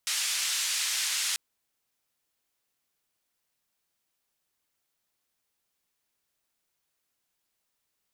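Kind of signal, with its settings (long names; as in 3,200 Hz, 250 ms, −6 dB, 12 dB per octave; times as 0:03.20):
band-limited noise 2,000–8,000 Hz, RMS −29.5 dBFS 1.29 s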